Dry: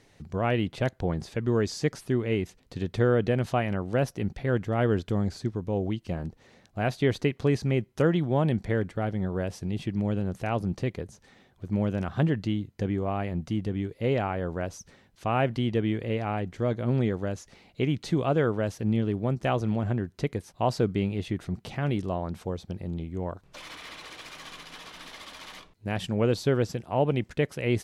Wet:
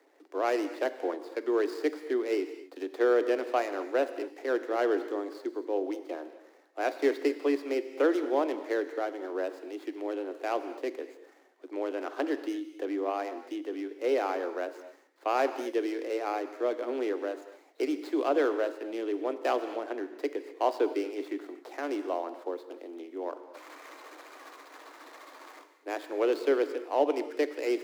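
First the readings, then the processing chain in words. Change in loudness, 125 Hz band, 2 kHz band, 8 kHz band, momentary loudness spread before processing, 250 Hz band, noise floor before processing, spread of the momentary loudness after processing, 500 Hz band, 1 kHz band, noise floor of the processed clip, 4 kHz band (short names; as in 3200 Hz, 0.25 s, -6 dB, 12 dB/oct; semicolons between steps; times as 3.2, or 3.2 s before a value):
-3.0 dB, under -40 dB, -2.0 dB, n/a, 15 LU, -5.0 dB, -61 dBFS, 17 LU, +0.5 dB, 0.0 dB, -59 dBFS, -5.5 dB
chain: median filter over 15 samples; steep high-pass 280 Hz 96 dB/oct; non-linear reverb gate 0.28 s flat, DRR 10 dB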